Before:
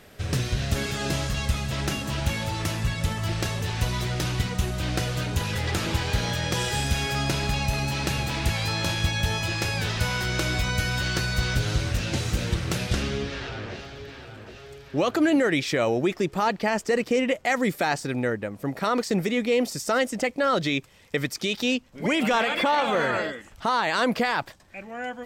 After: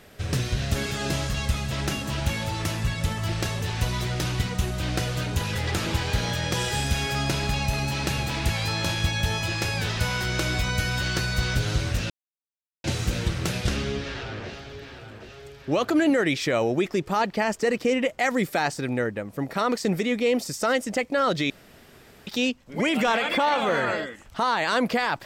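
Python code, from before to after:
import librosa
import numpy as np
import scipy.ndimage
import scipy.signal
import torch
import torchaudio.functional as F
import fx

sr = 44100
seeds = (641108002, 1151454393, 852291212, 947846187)

y = fx.edit(x, sr, fx.insert_silence(at_s=12.1, length_s=0.74),
    fx.room_tone_fill(start_s=20.76, length_s=0.77), tone=tone)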